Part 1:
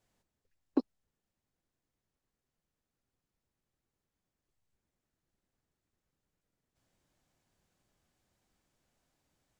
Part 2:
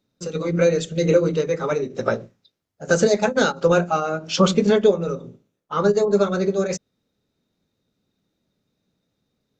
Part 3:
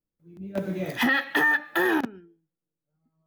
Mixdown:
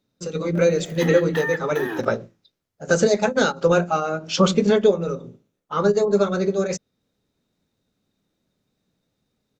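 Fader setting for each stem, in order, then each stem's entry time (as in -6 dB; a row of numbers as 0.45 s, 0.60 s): -5.0 dB, -0.5 dB, -6.5 dB; 0.25 s, 0.00 s, 0.00 s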